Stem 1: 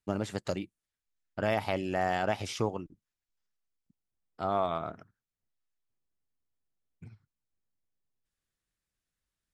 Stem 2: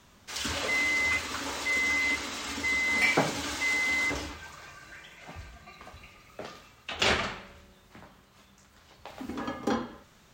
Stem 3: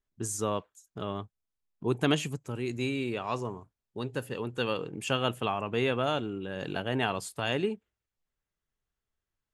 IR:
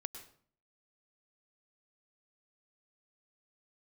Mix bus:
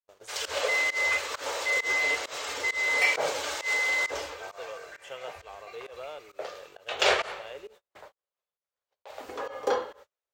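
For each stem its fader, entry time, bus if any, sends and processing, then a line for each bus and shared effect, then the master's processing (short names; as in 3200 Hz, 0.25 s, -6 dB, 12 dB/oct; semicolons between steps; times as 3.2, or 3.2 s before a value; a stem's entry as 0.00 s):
-10.0 dB, 0.00 s, no send, compressor 4:1, threshold -34 dBFS, peak gain reduction 9.5 dB; random-step tremolo, depth 55%
+1.0 dB, 0.00 s, no send, dry
-15.5 dB, 0.00 s, no send, dry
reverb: off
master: gate -49 dBFS, range -38 dB; resonant low shelf 340 Hz -13 dB, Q 3; pump 133 bpm, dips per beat 1, -23 dB, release 0.13 s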